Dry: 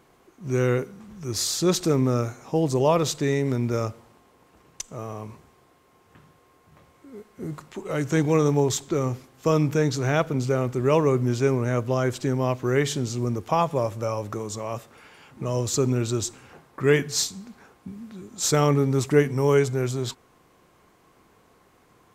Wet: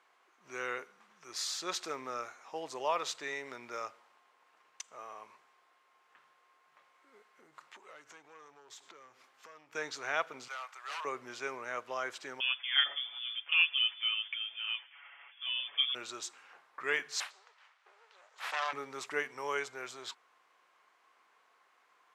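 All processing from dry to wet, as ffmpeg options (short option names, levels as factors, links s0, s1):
-filter_complex "[0:a]asettb=1/sr,asplit=3[s0][s1][s2];[s0]atrim=end=7.174[s3];[s1]atrim=start=7.17:end=9.75,asetpts=PTS-STARTPTS,afade=t=in:d=0.004:c=qsin,afade=t=out:st=2.576:d=0.004:c=qsin,acompressor=threshold=0.0141:ratio=5:attack=3.2:release=140:knee=1:detection=peak,aeval=exprs='clip(val(0),-1,0.0178)':c=same[s4];[s2]atrim=start=9.746[s5];[s3][s4]acrossfade=d=0.004:c1=hsin:c2=qsin[s6];[s6][s5]acrossfade=d=0.004:c1=qsin:c2=hsin,asettb=1/sr,asplit=3[s7][s8][s9];[s7]atrim=end=10.484[s10];[s8]atrim=start=10.48:end=11.05,asetpts=PTS-STARTPTS,afade=t=in:d=0.004:c=qsin,afade=t=out:st=0.566:d=0.004:c=qsin,highpass=f=790:w=0.5412,highpass=f=790:w=1.3066,aeval=exprs='0.0398*(abs(mod(val(0)/0.0398+3,4)-2)-1)':c=same[s11];[s9]atrim=start=11.046[s12];[s10][s11]acrossfade=d=0.004:c1=hsin:c2=qsin[s13];[s13][s12]acrossfade=d=0.004:c1=qsin:c2=hsin,asettb=1/sr,asplit=3[s14][s15][s16];[s14]atrim=end=12.404[s17];[s15]atrim=start=12.4:end=15.95,asetpts=PTS-STARTPTS,afade=t=in:d=0.004:c=qsin,afade=t=out:st=3.546:d=0.004:c=qsin,highpass=f=480:p=1,aecho=1:1:6.9:0.76,atrim=end_sample=156555,lowpass=f=3100:t=q:w=0.5098,lowpass=f=3100:t=q:w=0.6013,lowpass=f=3100:t=q:w=0.9,lowpass=f=3100:t=q:w=2.563,afreqshift=-3600[s18];[s16]atrim=start=15.946[s19];[s17][s18]acrossfade=d=0.004:c1=hsin:c2=qsin[s20];[s20][s19]acrossfade=d=0.004:c1=qsin:c2=hsin,asettb=1/sr,asplit=3[s21][s22][s23];[s21]atrim=end=17.204[s24];[s22]atrim=start=17.2:end=18.73,asetpts=PTS-STARTPTS,afade=t=in:d=0.004:c=qsin,afade=t=out:st=1.526:d=0.004:c=qsin,aeval=exprs='abs(val(0))':c=same,highpass=590,lowpass=7500[s25];[s23]atrim=start=18.726[s26];[s24][s25]acrossfade=d=0.004:c1=hsin:c2=qsin[s27];[s27][s26]acrossfade=d=0.004:c1=qsin:c2=hsin,highpass=1200,aemphasis=mode=reproduction:type=75fm,volume=0.794"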